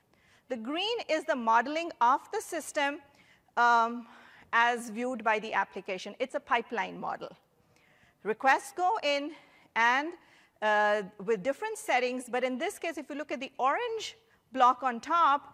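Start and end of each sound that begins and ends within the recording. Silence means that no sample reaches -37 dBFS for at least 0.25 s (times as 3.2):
0.51–2.96
3.57–4.01
4.53–7.28
8.25–9.29
9.76–10.14
10.62–14.1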